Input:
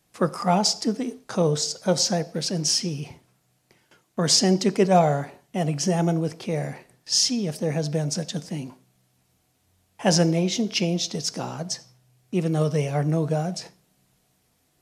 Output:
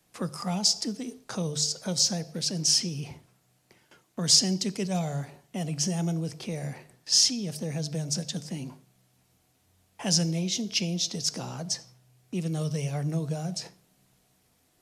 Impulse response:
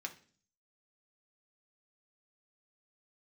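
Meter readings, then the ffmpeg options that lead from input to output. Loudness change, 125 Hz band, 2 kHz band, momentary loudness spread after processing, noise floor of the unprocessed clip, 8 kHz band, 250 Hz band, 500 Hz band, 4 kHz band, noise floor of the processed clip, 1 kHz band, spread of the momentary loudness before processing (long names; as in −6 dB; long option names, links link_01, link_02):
−4.0 dB, −5.0 dB, −7.5 dB, 16 LU, −68 dBFS, 0.0 dB, −6.5 dB, −12.5 dB, −0.5 dB, −68 dBFS, −13.5 dB, 13 LU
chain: -filter_complex "[0:a]bandreject=frequency=50:width_type=h:width=6,bandreject=frequency=100:width_type=h:width=6,bandreject=frequency=150:width_type=h:width=6,acrossover=split=160|3000[link_01][link_02][link_03];[link_02]acompressor=threshold=-38dB:ratio=3[link_04];[link_01][link_04][link_03]amix=inputs=3:normalize=0"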